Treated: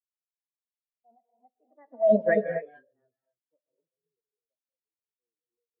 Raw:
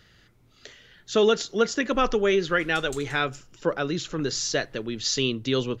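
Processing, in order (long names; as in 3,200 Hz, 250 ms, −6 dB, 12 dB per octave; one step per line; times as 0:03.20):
source passing by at 0:02.27, 34 m/s, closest 3.1 metres
high-pass filter 180 Hz 12 dB per octave
low-pass that shuts in the quiet parts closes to 640 Hz, open at −25.5 dBFS
low-pass filter 1,000 Hz 6 dB per octave
formants moved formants +5 semitones
in parallel at −8 dB: centre clipping without the shift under −32.5 dBFS
on the sum: reverb whose tail is shaped and stops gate 290 ms rising, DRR 1.5 dB
every bin expanded away from the loudest bin 2.5 to 1
level +2 dB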